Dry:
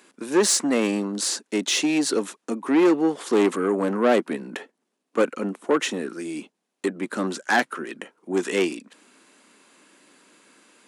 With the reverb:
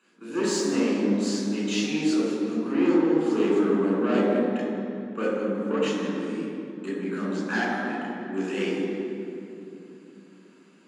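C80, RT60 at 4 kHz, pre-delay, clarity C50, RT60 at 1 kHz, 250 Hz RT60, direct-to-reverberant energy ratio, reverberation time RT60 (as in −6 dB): 0.0 dB, 1.8 s, 3 ms, −1.5 dB, 2.6 s, 4.6 s, −6.5 dB, 3.0 s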